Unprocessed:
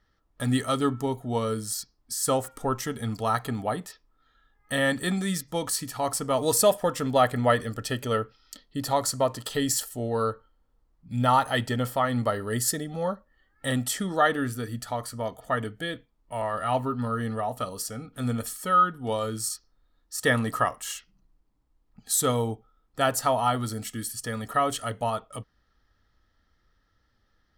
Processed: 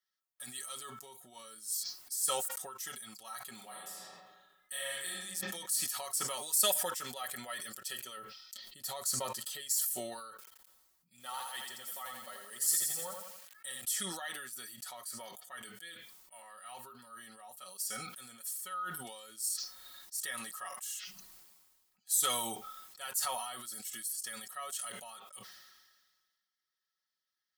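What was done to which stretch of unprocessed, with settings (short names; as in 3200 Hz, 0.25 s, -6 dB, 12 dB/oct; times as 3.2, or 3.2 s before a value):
3.54–5.18 reverb throw, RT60 1.3 s, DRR -4.5 dB
8.17–9.61 low shelf 460 Hz +8 dB
10.3–13.81 lo-fi delay 85 ms, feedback 55%, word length 8-bit, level -4.5 dB
whole clip: differentiator; comb 5.4 ms, depth 84%; sustainer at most 36 dB/s; gain -8 dB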